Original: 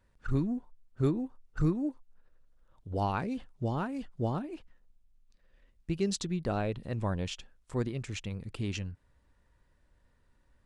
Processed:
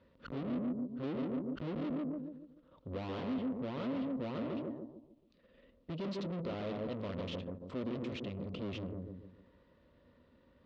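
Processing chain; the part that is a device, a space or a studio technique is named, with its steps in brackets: analogue delay pedal into a guitar amplifier (bucket-brigade echo 144 ms, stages 1024, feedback 37%, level -6 dB; valve stage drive 46 dB, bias 0.4; cabinet simulation 100–3900 Hz, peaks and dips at 120 Hz -7 dB, 250 Hz +6 dB, 530 Hz +7 dB, 810 Hz -9 dB, 1.6 kHz -8 dB, 2.3 kHz -4 dB); trim +8.5 dB

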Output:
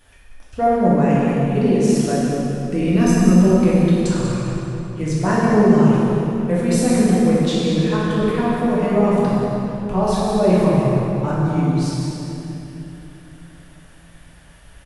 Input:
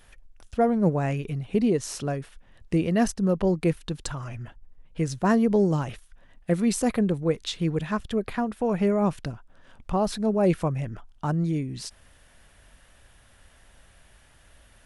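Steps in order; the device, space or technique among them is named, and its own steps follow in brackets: 2.81–3.41 s: comb 0.8 ms, depth 56%; cave (delay 191 ms -9.5 dB; reverberation RT60 3.3 s, pre-delay 3 ms, DRR -8.5 dB); trim -1.5 dB

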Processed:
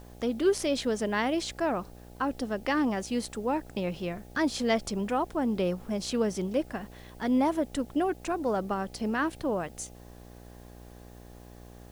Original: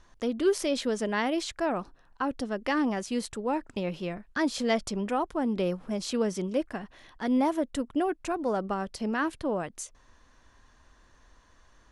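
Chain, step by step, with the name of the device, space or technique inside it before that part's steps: video cassette with head-switching buzz (mains buzz 60 Hz, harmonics 14, -49 dBFS -4 dB/octave; white noise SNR 32 dB)

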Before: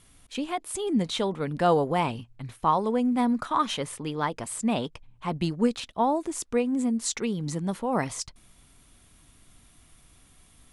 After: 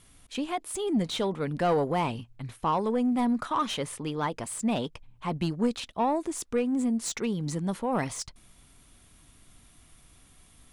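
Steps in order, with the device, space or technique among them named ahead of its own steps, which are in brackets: saturation between pre-emphasis and de-emphasis (treble shelf 2.1 kHz +11 dB; saturation -17.5 dBFS, distortion -14 dB; treble shelf 2.1 kHz -11 dB)

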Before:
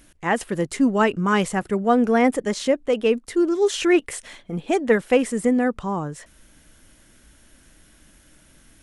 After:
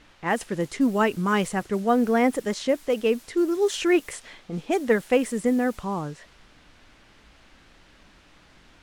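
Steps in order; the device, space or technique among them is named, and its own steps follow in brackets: cassette deck with a dynamic noise filter (white noise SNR 24 dB; level-controlled noise filter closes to 2.8 kHz, open at -17 dBFS); trim -3 dB

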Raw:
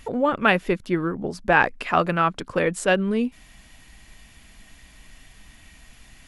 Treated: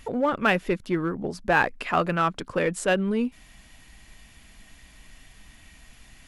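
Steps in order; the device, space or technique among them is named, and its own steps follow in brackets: parallel distortion (in parallel at -6.5 dB: hard clipper -20 dBFS, distortion -7 dB); on the sum: trim -5 dB

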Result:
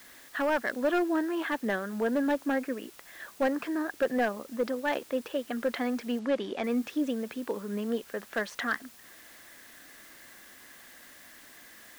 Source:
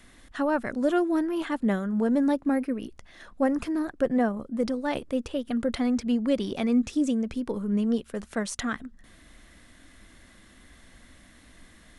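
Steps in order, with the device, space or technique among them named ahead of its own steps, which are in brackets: drive-through speaker (band-pass 370–3300 Hz; peaking EQ 1.7 kHz +7 dB 0.24 oct; hard clipper -22 dBFS, distortion -15 dB; white noise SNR 22 dB); 6.19–6.64 s: distance through air 65 m; trim +1 dB

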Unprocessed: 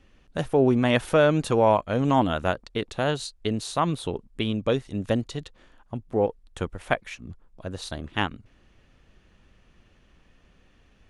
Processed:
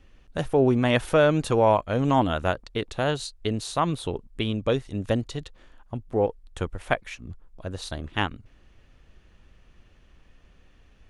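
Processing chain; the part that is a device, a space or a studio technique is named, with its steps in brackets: low shelf boost with a cut just above (bass shelf 74 Hz +6 dB; peaking EQ 200 Hz -2.5 dB 0.77 oct)

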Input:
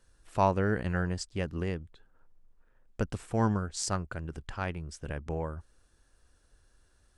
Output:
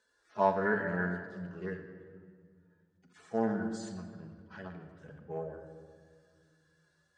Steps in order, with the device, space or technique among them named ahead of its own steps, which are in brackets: harmonic-percussive separation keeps harmonic; dynamic bell 1.8 kHz, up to +6 dB, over -57 dBFS, Q 2.1; full-range speaker at full volume (loudspeaker Doppler distortion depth 0.21 ms; cabinet simulation 280–7200 Hz, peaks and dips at 370 Hz -4 dB, 1.7 kHz +5 dB, 2.6 kHz -7 dB, 5.7 kHz -3 dB); simulated room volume 3100 m³, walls mixed, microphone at 1.4 m

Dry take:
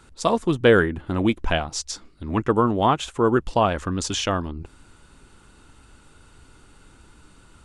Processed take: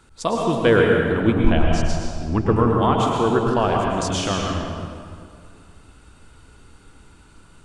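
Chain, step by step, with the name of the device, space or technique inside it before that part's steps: 1.27–2.54 s: tilt EQ -2 dB/octave; stairwell (reverberation RT60 2.2 s, pre-delay 100 ms, DRR -1 dB); trim -2 dB

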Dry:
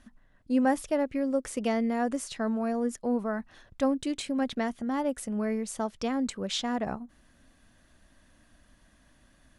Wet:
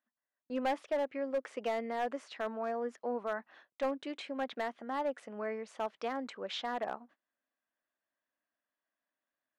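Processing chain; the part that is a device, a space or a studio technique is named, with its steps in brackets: high-pass 91 Hz 6 dB/octave; walkie-talkie (band-pass 490–2600 Hz; hard clipper -26 dBFS, distortion -14 dB; gate -57 dBFS, range -23 dB); trim -1 dB

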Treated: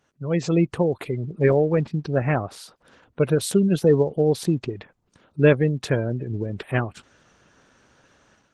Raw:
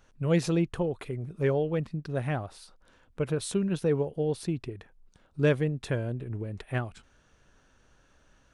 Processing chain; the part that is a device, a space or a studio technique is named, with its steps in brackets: noise-suppressed video call (high-pass 110 Hz 12 dB/octave; spectral gate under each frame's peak -30 dB strong; level rider gain up to 10.5 dB; trim -1 dB; Opus 16 kbps 48 kHz)

